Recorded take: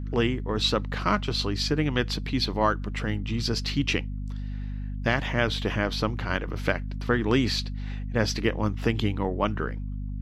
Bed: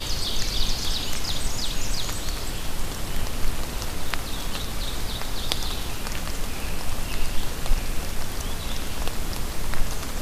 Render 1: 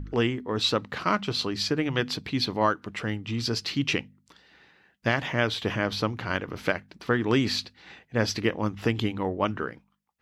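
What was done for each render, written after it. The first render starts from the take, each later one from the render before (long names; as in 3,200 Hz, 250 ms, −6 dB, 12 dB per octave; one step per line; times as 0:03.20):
hum removal 50 Hz, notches 5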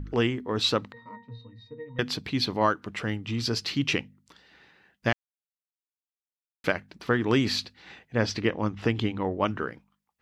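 0:00.92–0:01.99: resonances in every octave A#, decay 0.31 s
0:05.13–0:06.64: silence
0:08.15–0:09.31: high-frequency loss of the air 61 metres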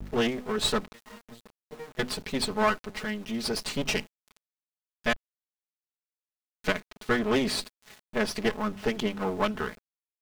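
lower of the sound and its delayed copy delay 4.7 ms
centre clipping without the shift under −45.5 dBFS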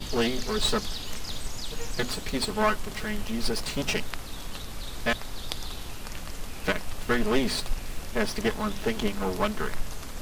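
mix in bed −8 dB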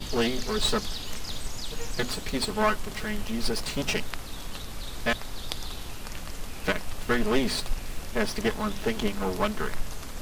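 no processing that can be heard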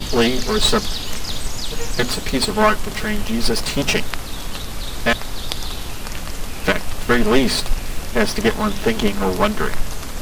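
level +9.5 dB
brickwall limiter −1 dBFS, peak gain reduction 1.5 dB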